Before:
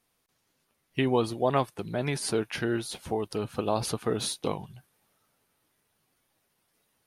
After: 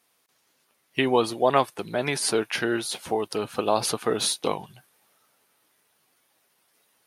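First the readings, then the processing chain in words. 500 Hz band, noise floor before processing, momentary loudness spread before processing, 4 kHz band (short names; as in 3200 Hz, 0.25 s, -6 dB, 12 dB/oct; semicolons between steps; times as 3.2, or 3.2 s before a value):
+4.5 dB, -75 dBFS, 7 LU, +7.0 dB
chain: HPF 440 Hz 6 dB/oct; gain +7 dB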